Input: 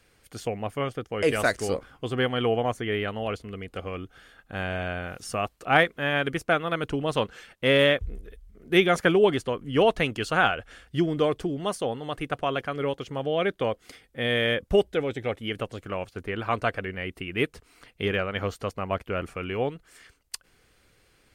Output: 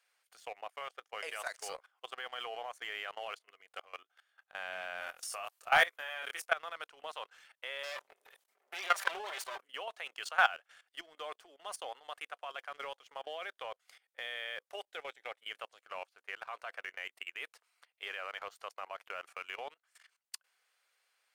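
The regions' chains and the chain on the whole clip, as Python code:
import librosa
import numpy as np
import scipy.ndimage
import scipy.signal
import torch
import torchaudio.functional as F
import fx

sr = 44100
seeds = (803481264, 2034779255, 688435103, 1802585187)

y = fx.chain(x, sr, fx.high_shelf(hz=7200.0, db=11.5),
    fx.doubler(ms=26.0, db=-6.0), at=(4.98, 6.5))
y = fx.chain(y, sr, fx.lower_of_two(delay_ms=5.1),
    fx.sustainer(db_per_s=31.0), at=(7.83, 9.61))
y = scipy.signal.sosfilt(scipy.signal.butter(4, 690.0, 'highpass', fs=sr, output='sos'), y)
y = fx.leveller(y, sr, passes=1)
y = fx.level_steps(y, sr, step_db=18)
y = y * librosa.db_to_amplitude(-5.5)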